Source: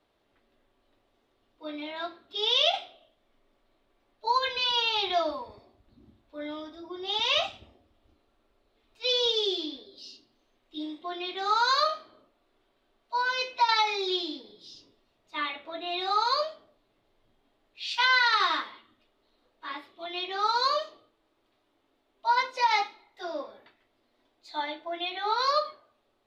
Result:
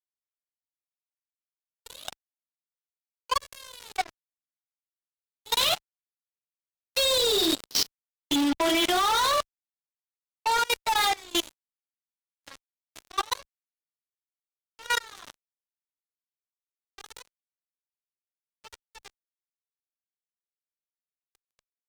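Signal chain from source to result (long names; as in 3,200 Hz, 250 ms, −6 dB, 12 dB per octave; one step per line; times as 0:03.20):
source passing by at 0:09.73, 25 m/s, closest 2.4 metres
fuzz pedal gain 60 dB, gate −59 dBFS
output level in coarse steps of 23 dB
tempo change 1.2×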